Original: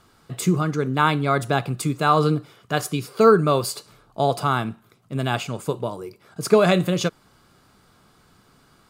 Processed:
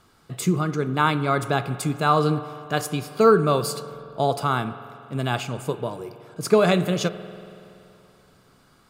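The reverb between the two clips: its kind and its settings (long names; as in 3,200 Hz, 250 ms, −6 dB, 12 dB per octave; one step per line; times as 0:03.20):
spring reverb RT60 2.7 s, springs 47 ms, chirp 70 ms, DRR 13 dB
level −1.5 dB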